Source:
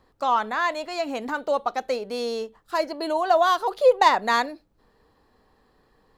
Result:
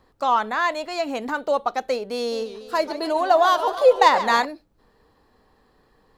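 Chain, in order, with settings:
0:02.17–0:04.45: feedback echo with a swinging delay time 144 ms, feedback 64%, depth 203 cents, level −12.5 dB
level +2 dB

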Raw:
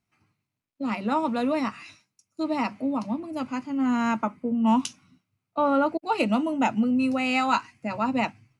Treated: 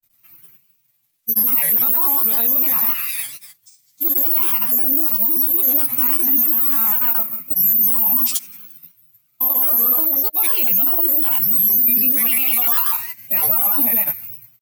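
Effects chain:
bad sample-rate conversion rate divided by 3×, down none, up zero stuff
on a send at −12 dB: convolution reverb, pre-delay 3 ms
on the sum: pitch vibrato 0.83 Hz 93 cents
first-order pre-emphasis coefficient 0.9
phase-vocoder stretch with locked phases 1.7×
bass and treble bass +1 dB, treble −5 dB
double-tracking delay 24 ms −4.5 dB
granular cloud, pitch spread up and down by 3 semitones
boost into a limiter +28 dB
level −5.5 dB

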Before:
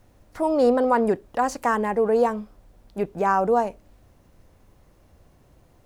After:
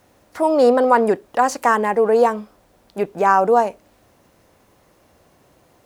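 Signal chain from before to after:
high-pass filter 350 Hz 6 dB per octave
level +7 dB

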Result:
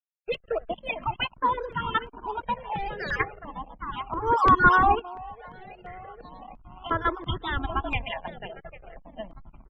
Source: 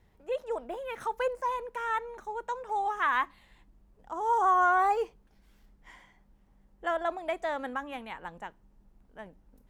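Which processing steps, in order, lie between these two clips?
time-frequency cells dropped at random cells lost 23%
parametric band 2,900 Hz +14 dB 1.1 octaves
comb filter 2.9 ms, depth 38%
on a send: delay that swaps between a low-pass and a high-pass 401 ms, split 970 Hz, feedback 66%, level −8.5 dB
0:02.57–0:03.20: on the sum: hard clipping −28.5 dBFS, distortion −14 dB
in parallel at −8 dB: sample-and-hold swept by an LFO 40×, swing 100% 2.9 Hz
on the sum: slack as between gear wheels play −37.5 dBFS
spectral peaks only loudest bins 64
0:04.99–0:06.91: downward compressor 12 to 1, threshold −39 dBFS, peak gain reduction 16.5 dB
0:07.50–0:08.06: low shelf with overshoot 130 Hz +10.5 dB, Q 1.5
step-sequenced phaser 2.9 Hz 290–2,400 Hz
level +5.5 dB

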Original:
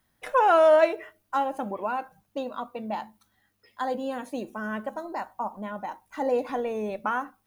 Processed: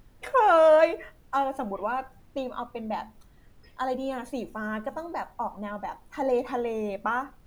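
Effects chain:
background noise brown −53 dBFS

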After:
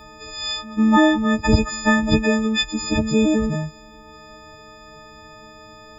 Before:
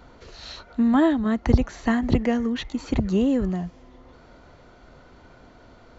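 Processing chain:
every partial snapped to a pitch grid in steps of 6 semitones
echo ahead of the sound 147 ms −21 dB
level +3.5 dB

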